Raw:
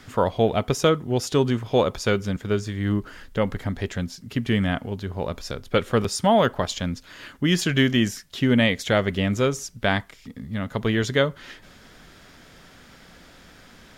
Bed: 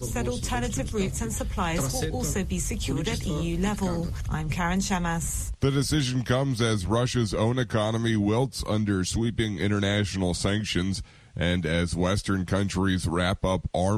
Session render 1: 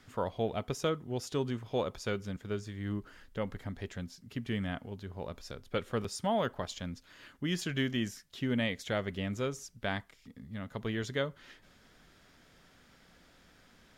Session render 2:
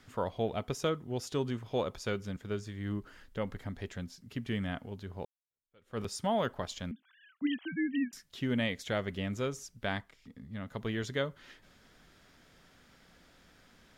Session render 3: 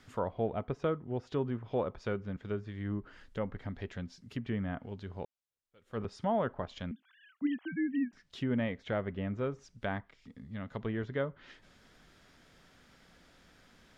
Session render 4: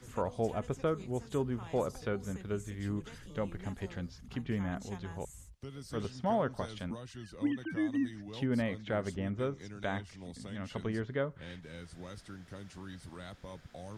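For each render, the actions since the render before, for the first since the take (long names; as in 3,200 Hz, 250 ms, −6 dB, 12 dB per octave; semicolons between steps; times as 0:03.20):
level −12.5 dB
0:05.25–0:06.00: fade in exponential; 0:06.91–0:08.13: three sine waves on the formant tracks; 0:09.99–0:10.66: high-shelf EQ 5,100 Hz → 7,800 Hz −6.5 dB
treble cut that deepens with the level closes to 1,600 Hz, closed at −32.5 dBFS; high-shelf EQ 9,400 Hz −3 dB
mix in bed −22 dB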